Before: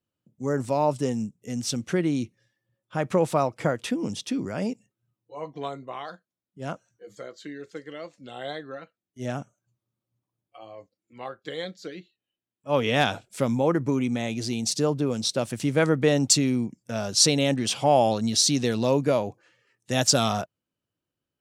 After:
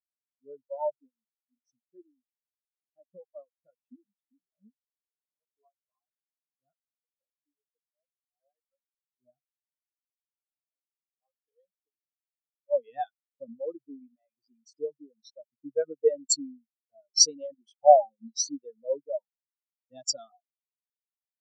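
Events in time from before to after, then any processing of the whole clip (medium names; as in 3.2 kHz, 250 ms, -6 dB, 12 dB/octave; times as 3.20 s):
1.00–5.53 s: flange 1 Hz, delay 2.9 ms, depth 9.5 ms, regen +56%
whole clip: reverb removal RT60 1.6 s; tilt EQ +2 dB/octave; spectral contrast expander 4:1; trim -3.5 dB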